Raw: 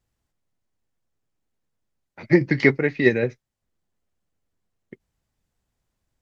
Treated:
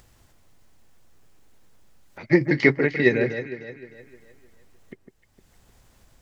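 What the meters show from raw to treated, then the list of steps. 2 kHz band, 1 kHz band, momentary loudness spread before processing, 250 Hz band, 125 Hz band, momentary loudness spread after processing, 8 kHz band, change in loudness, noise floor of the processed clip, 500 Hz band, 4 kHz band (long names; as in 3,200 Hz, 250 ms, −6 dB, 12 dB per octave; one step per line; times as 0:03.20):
+0.5 dB, +0.5 dB, 7 LU, −1.0 dB, −1.5 dB, 17 LU, can't be measured, −1.0 dB, −61 dBFS, −0.5 dB, +0.5 dB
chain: parametric band 170 Hz −2.5 dB 2.2 octaves
upward compression, threshold −39 dBFS
on a send: delay that swaps between a low-pass and a high-pass 153 ms, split 1,600 Hz, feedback 62%, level −7.5 dB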